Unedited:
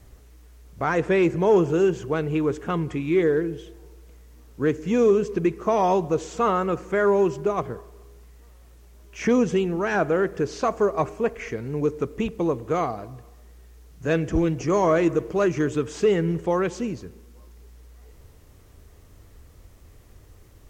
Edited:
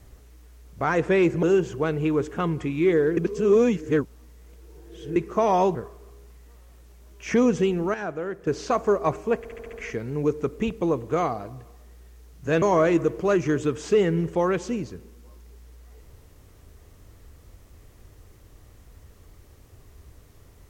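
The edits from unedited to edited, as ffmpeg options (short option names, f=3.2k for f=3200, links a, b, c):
-filter_complex "[0:a]asplit=13[a][b][c][d][e][f][g][h][i][j][k][l][m];[a]atrim=end=1.432[n];[b]atrim=start=1.728:end=3.472[o];[c]atrim=start=3.468:end=5.462,asetpts=PTS-STARTPTS,areverse[p];[d]atrim=start=5.458:end=6.052[q];[e]atrim=start=7.678:end=9.872[r];[f]atrim=start=9.868:end=10.402,asetpts=PTS-STARTPTS,volume=-9dB[s];[g]atrim=start=10.398:end=11.382[t];[h]atrim=start=11.308:end=11.382[u];[i]atrim=start=11.308:end=11.382[v];[j]atrim=start=11.308:end=11.382[w];[k]atrim=start=11.308:end=11.382[x];[l]atrim=start=11.308:end=14.202[y];[m]atrim=start=14.728[z];[n][o]acrossfade=d=0.004:c1=hsin:c2=hsin[aa];[aa][p]acrossfade=d=0.004:c1=hsin:c2=hsin[ab];[ab][q]acrossfade=d=0.004:c1=hsin:c2=hsin[ac];[ac][r]acrossfade=d=0.004:c1=hsin:c2=hsin[ad];[ad][s]acrossfade=d=0.004:c1=hsin:c2=hsin[ae];[ae][t]acrossfade=d=0.004:c1=hsin:c2=hsin[af];[af][u]acrossfade=d=0.004:c1=hsin:c2=hsin[ag];[ag][v]acrossfade=d=0.004:c1=hsin:c2=hsin[ah];[ah][w]acrossfade=d=0.004:c1=hsin:c2=hsin[ai];[ai][x]acrossfade=d=0.004:c1=hsin:c2=hsin[aj];[aj][y]acrossfade=d=0.004:c1=hsin:c2=hsin[ak];[ak][z]acrossfade=d=0.004:c1=hsin:c2=hsin"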